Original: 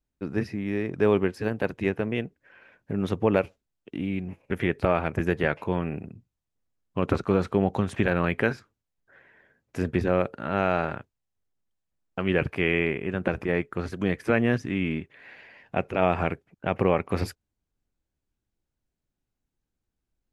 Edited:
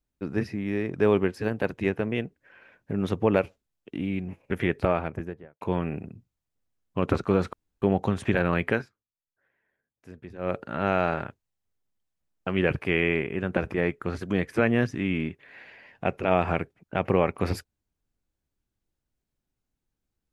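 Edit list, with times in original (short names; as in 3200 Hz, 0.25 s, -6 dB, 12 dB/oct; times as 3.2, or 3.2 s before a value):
4.74–5.61 studio fade out
7.53 insert room tone 0.29 s
8.42–10.28 dip -18 dB, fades 0.19 s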